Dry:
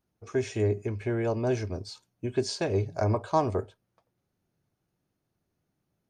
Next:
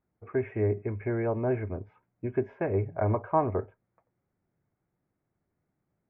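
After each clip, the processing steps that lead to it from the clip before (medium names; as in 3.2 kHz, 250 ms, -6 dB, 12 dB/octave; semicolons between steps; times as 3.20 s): elliptic low-pass 2.2 kHz, stop band 50 dB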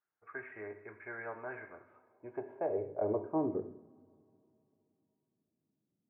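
two-slope reverb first 0.73 s, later 3.2 s, from -19 dB, DRR 6.5 dB; band-pass sweep 1.5 kHz -> 240 Hz, 1.75–3.75 s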